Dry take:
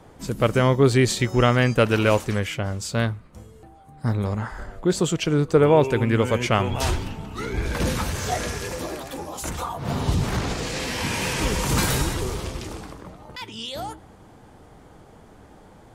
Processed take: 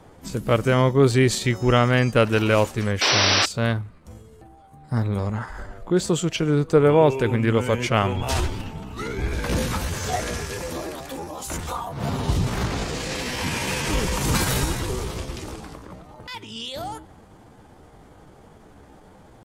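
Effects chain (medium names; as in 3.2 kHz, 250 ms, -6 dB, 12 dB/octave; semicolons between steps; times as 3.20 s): tempo 0.82×; painted sound noise, 3.01–3.46 s, 240–6000 Hz -19 dBFS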